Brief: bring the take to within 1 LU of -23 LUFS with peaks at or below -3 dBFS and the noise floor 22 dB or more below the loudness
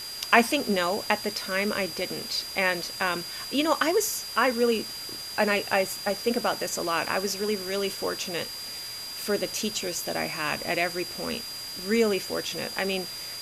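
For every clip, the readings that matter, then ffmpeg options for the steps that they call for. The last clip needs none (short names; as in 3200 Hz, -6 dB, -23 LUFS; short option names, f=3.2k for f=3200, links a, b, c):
steady tone 4800 Hz; tone level -36 dBFS; noise floor -37 dBFS; noise floor target -49 dBFS; loudness -27.0 LUFS; peak -3.0 dBFS; loudness target -23.0 LUFS
-> -af "bandreject=f=4.8k:w=30"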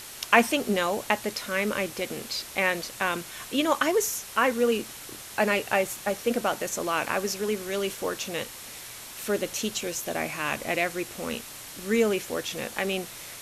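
steady tone none; noise floor -42 dBFS; noise floor target -50 dBFS
-> -af "afftdn=nr=8:nf=-42"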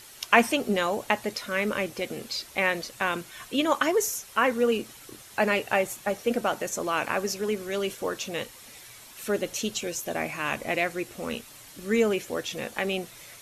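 noise floor -48 dBFS; noise floor target -50 dBFS
-> -af "afftdn=nr=6:nf=-48"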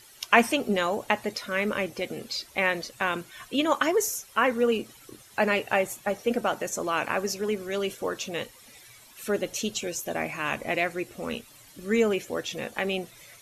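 noise floor -53 dBFS; loudness -27.5 LUFS; peak -3.5 dBFS; loudness target -23.0 LUFS
-> -af "volume=4.5dB,alimiter=limit=-3dB:level=0:latency=1"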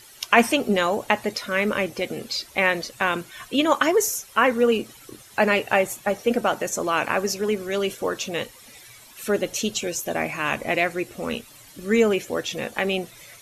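loudness -23.5 LUFS; peak -3.0 dBFS; noise floor -48 dBFS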